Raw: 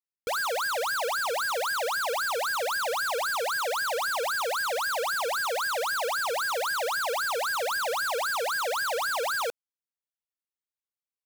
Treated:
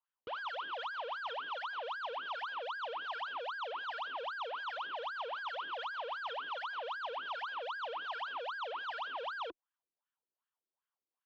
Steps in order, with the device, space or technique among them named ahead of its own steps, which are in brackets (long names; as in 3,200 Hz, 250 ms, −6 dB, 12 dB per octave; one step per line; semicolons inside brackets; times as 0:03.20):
wah-wah guitar rig (LFO wah 2.6 Hz 340–1,700 Hz, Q 3.8; tube saturation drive 56 dB, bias 0.55; loudspeaker in its box 88–3,500 Hz, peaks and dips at 160 Hz −5 dB, 400 Hz −3 dB, 1,000 Hz +6 dB, 2,100 Hz −9 dB, 3,100 Hz +9 dB)
level +15.5 dB